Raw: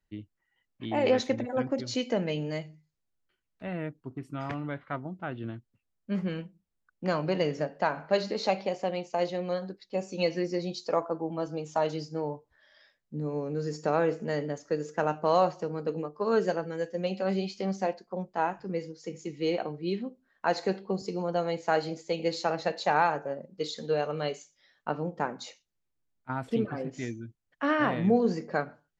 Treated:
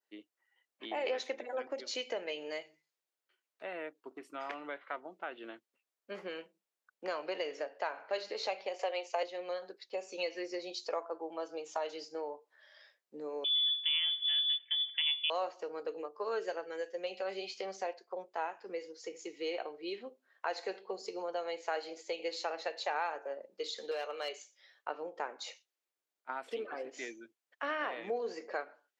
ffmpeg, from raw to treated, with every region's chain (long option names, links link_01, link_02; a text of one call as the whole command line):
ffmpeg -i in.wav -filter_complex "[0:a]asettb=1/sr,asplit=3[link_01][link_02][link_03];[link_01]atrim=end=8.794[link_04];[link_02]atrim=start=8.79:end=9.23,asetpts=PTS-STARTPTS,afade=type=in:duration=0.004:curve=qsin,afade=type=out:start_time=0.436:duration=0.004:curve=qsin,highpass=frequency=380:width=0.5412,highpass=frequency=380:width=1.3066,acontrast=63[link_05];[link_03]atrim=start=9.226[link_06];[link_04][link_05]acrossfade=duration=0.004:curve1=hsin:curve2=qsin[link_07];[link_07][link_06]acrossfade=duration=0.004:curve1=qsin:curve2=hsin,asettb=1/sr,asplit=3[link_08][link_09][link_10];[link_08]atrim=end=13.444[link_11];[link_09]atrim=start=13.44:end=15.3,asetpts=PTS-STARTPTS,afade=type=in:duration=0.004:curve=qsin,afade=type=out:start_time=1.856:duration=0.004:curve=qsin,lowshelf=frequency=190:width_type=q:width=3:gain=13,lowpass=frequency=3100:width_type=q:width=0.5098,lowpass=frequency=3100:width_type=q:width=0.6013,lowpass=frequency=3100:width_type=q:width=0.9,lowpass=frequency=3100:width_type=q:width=2.563,afreqshift=-3600[link_12];[link_10]atrim=start=15.296[link_13];[link_11][link_12]acrossfade=duration=0.004:curve1=hsin:curve2=qsin[link_14];[link_14][link_13]acrossfade=duration=0.004:curve1=qsin:curve2=hsin,asettb=1/sr,asplit=3[link_15][link_16][link_17];[link_15]atrim=end=23.914[link_18];[link_16]atrim=start=23.91:end=24.33,asetpts=PTS-STARTPTS,afade=type=in:duration=0.004:curve=qsin,afade=type=out:start_time=0.416:duration=0.004:curve=qsin,highpass=frequency=380:poles=1,highshelf=frequency=2100:gain=3.5,volume=24.5dB,asoftclip=hard,volume=-24.5dB[link_19];[link_17]atrim=start=24.326[link_20];[link_18][link_19]acrossfade=duration=0.004:curve1=hsin:curve2=qsin[link_21];[link_21][link_20]acrossfade=duration=0.004:curve1=qsin:curve2=hsin,highpass=frequency=390:width=0.5412,highpass=frequency=390:width=1.3066,adynamicequalizer=threshold=0.00501:dfrequency=2600:dqfactor=1.1:tfrequency=2600:tqfactor=1.1:attack=5:release=100:ratio=0.375:range=2.5:mode=boostabove:tftype=bell,acompressor=threshold=-40dB:ratio=2" out.wav